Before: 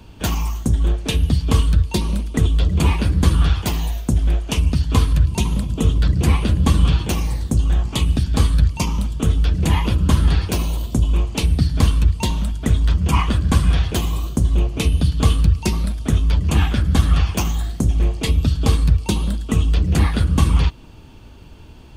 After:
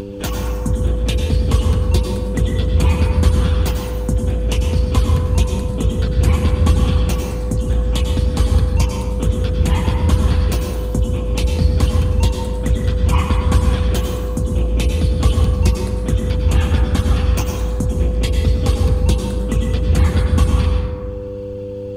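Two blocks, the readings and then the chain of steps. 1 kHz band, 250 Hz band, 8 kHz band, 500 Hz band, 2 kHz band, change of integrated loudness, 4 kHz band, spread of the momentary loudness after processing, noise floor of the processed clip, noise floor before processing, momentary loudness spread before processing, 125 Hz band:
+0.5 dB, +0.5 dB, -0.5 dB, +7.5 dB, -0.5 dB, +1.0 dB, -1.0 dB, 6 LU, -26 dBFS, -40 dBFS, 5 LU, +1.5 dB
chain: reverb removal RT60 0.73 s; mains buzz 100 Hz, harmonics 5, -32 dBFS 0 dB/octave; plate-style reverb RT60 1.7 s, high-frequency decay 0.4×, pre-delay 85 ms, DRR 1 dB; upward compressor, threshold -20 dBFS; trim -1.5 dB

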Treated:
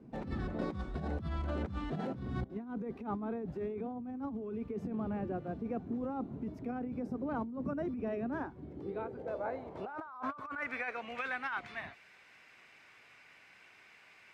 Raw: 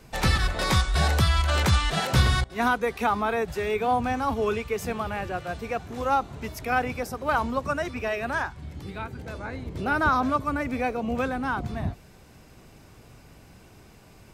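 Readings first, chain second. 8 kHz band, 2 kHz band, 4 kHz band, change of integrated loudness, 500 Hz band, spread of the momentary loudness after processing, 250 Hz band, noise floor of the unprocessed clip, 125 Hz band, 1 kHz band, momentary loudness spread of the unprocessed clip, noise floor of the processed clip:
under -30 dB, -14.5 dB, under -20 dB, -13.0 dB, -11.0 dB, 20 LU, -6.5 dB, -52 dBFS, -15.0 dB, -16.5 dB, 12 LU, -60 dBFS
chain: band-pass sweep 250 Hz -> 2.1 kHz, 8.23–11.11 s; compressor with a negative ratio -39 dBFS, ratio -1; trim +1 dB

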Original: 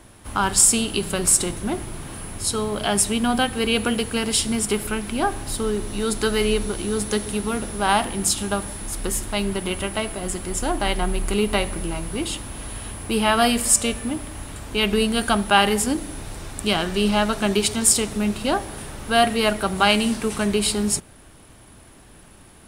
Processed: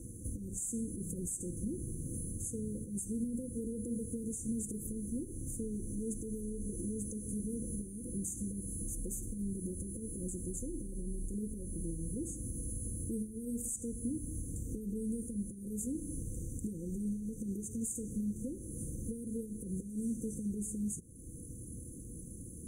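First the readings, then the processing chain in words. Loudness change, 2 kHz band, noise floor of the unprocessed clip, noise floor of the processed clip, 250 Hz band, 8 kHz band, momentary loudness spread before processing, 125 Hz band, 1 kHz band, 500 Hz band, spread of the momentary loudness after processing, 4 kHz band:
-18.0 dB, under -40 dB, -48 dBFS, -47 dBFS, -13.0 dB, -18.5 dB, 12 LU, -10.0 dB, under -40 dB, -22.0 dB, 5 LU, under -40 dB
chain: tone controls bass +3 dB, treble 0 dB; compression 3:1, threshold -38 dBFS, peak gain reduction 19.5 dB; peak limiter -28.5 dBFS, peak gain reduction 9 dB; brick-wall FIR band-stop 530–5900 Hz; comb of notches 410 Hz; trim +1.5 dB

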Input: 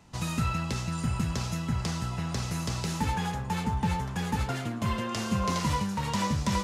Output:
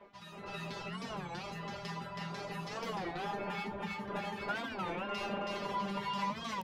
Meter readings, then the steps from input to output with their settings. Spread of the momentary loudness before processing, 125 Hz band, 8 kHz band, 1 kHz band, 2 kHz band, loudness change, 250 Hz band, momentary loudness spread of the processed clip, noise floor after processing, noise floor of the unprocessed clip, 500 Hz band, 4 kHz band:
4 LU, -17.5 dB, -17.5 dB, -5.5 dB, -3.5 dB, -8.5 dB, -11.5 dB, 6 LU, -50 dBFS, -36 dBFS, -2.0 dB, -7.0 dB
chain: wind noise 530 Hz -32 dBFS; spring tank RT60 3.2 s, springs 48 ms, chirp 80 ms, DRR 8.5 dB; peak limiter -22.5 dBFS, peak gain reduction 13 dB; distance through air 360 m; reverb removal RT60 1.5 s; feedback comb 200 Hz, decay 0.17 s, harmonics all, mix 100%; on a send: delay 323 ms -3 dB; on the sum: level rider gain up to 10.5 dB; RIAA curve recording; hum notches 50/100/150/200/250/300/350/400 Hz; warped record 33 1/3 rpm, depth 250 cents

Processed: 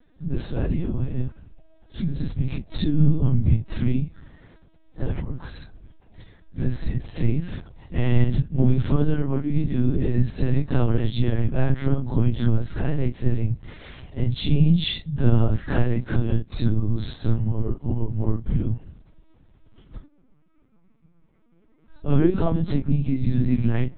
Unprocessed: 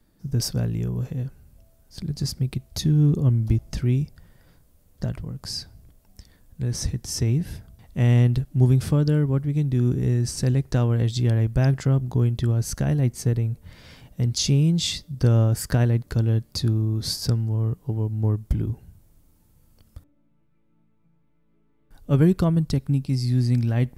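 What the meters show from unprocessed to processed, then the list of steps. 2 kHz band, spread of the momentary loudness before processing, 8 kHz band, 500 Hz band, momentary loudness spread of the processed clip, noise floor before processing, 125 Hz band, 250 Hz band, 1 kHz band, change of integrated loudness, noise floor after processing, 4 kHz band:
+1.0 dB, 12 LU, under -40 dB, 0.0 dB, 11 LU, -62 dBFS, -2.0 dB, +1.0 dB, +1.0 dB, -1.5 dB, -57 dBFS, -4.5 dB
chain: phase randomisation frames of 100 ms; in parallel at -0.5 dB: compression, threshold -29 dBFS, peak gain reduction 16 dB; on the sum: LPC vocoder at 8 kHz pitch kept

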